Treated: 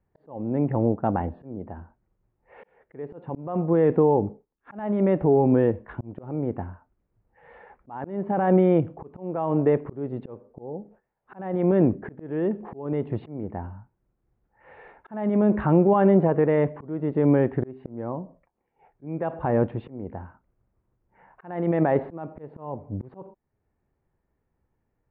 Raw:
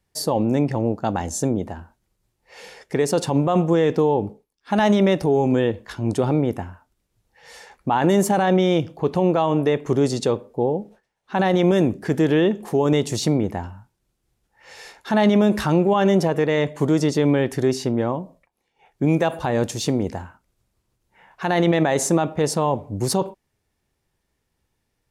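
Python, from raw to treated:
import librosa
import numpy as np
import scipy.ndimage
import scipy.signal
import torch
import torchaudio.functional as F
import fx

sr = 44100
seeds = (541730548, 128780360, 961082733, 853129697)

y = scipy.ndimage.gaussian_filter1d(x, 5.0, mode='constant')
y = fx.auto_swell(y, sr, attack_ms=514.0)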